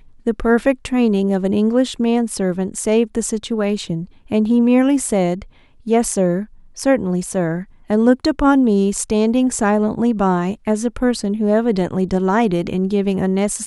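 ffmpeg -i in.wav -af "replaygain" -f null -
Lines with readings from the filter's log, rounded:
track_gain = -2.0 dB
track_peak = 0.607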